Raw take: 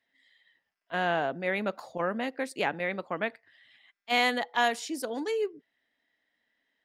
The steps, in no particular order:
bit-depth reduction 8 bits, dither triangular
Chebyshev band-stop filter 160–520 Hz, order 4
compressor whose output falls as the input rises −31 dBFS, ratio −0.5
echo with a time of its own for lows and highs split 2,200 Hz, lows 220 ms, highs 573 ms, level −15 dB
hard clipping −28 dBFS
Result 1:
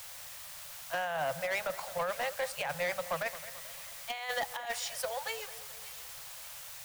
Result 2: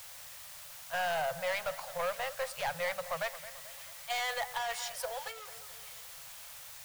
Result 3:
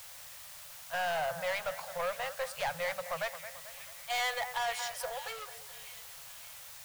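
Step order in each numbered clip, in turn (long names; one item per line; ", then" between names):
bit-depth reduction, then Chebyshev band-stop filter, then compressor whose output falls as the input rises, then hard clipping, then echo with a time of its own for lows and highs
hard clipping, then echo with a time of its own for lows and highs, then bit-depth reduction, then compressor whose output falls as the input rises, then Chebyshev band-stop filter
echo with a time of its own for lows and highs, then bit-depth reduction, then hard clipping, then Chebyshev band-stop filter, then compressor whose output falls as the input rises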